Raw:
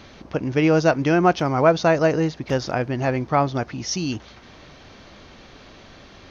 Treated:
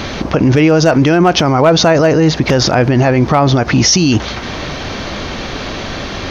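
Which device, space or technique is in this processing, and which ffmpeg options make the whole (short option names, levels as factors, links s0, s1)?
loud club master: -af "acompressor=threshold=0.0794:ratio=1.5,asoftclip=type=hard:threshold=0.251,alimiter=level_in=15.8:limit=0.891:release=50:level=0:latency=1,volume=0.891"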